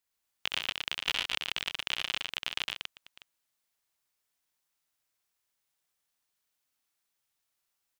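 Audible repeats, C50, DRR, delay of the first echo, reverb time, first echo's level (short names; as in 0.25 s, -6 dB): 5, none, none, 64 ms, none, -5.5 dB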